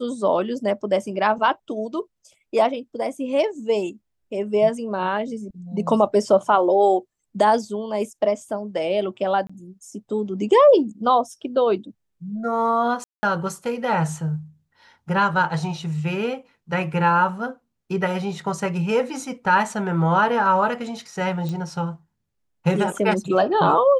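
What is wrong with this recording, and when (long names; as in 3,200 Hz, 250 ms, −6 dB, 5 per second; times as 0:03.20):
0:09.47–0:09.49: drop-out 25 ms
0:13.04–0:13.23: drop-out 190 ms
0:21.49: click −18 dBFS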